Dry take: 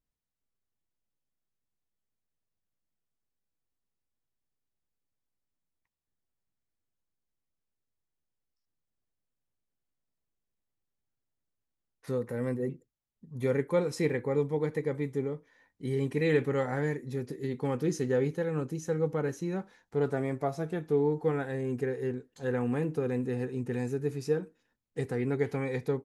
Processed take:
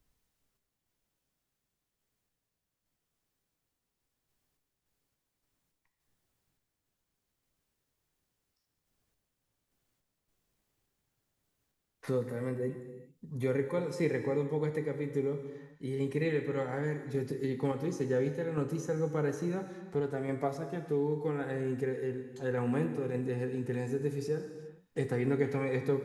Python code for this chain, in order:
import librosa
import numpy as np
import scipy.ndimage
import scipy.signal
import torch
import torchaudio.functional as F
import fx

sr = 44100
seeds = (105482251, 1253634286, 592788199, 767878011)

y = fx.tremolo_random(x, sr, seeds[0], hz=3.5, depth_pct=55)
y = fx.rev_gated(y, sr, seeds[1], gate_ms=430, shape='falling', drr_db=7.0)
y = fx.band_squash(y, sr, depth_pct=40)